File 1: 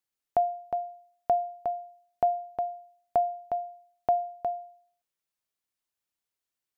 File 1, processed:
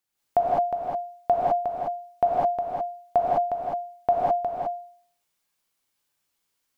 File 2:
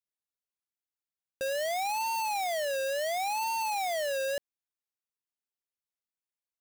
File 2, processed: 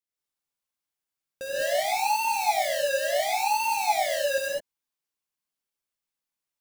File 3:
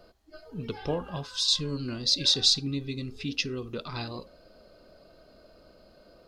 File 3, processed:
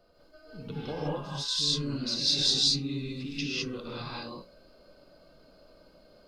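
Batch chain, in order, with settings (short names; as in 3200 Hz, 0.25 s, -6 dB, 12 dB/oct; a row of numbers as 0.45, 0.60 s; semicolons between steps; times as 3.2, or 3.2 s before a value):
non-linear reverb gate 0.23 s rising, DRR -7 dB; normalise peaks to -12 dBFS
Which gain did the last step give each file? +3.5, -2.5, -9.0 dB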